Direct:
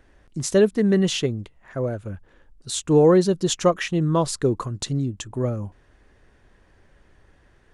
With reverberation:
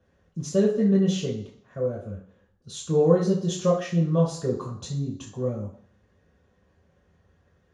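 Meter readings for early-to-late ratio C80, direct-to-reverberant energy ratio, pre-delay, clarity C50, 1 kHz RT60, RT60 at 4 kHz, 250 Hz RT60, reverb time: 10.0 dB, -5.5 dB, 3 ms, 6.0 dB, 0.55 s, 0.65 s, 0.60 s, 0.55 s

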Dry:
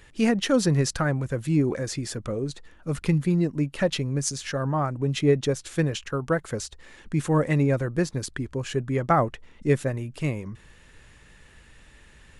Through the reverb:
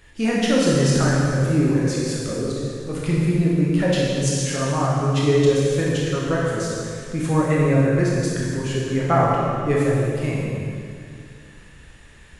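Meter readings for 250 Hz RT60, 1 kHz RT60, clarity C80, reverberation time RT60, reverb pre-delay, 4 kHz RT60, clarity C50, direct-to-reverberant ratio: 2.6 s, 2.1 s, 0.0 dB, 2.2 s, 18 ms, 2.1 s, -2.0 dB, -5.5 dB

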